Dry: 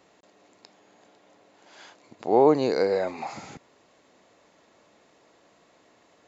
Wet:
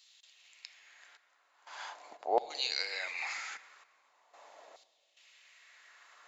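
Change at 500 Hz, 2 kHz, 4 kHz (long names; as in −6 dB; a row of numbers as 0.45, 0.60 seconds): −16.5, +2.5, +6.0 decibels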